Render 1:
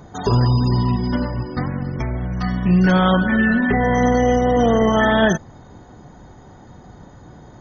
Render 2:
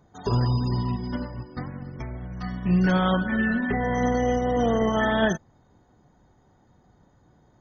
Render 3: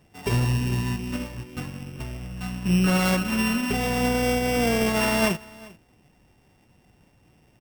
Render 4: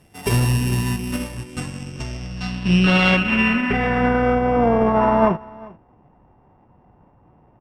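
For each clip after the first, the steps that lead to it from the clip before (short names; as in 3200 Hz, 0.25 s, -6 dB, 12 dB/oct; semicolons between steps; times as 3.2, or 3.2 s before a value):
upward expander 1.5:1, over -35 dBFS; gain -5.5 dB
sample sorter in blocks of 16 samples; echo 0.397 s -22.5 dB
low-pass sweep 12000 Hz -> 1000 Hz, 1.15–4.7; gain +4.5 dB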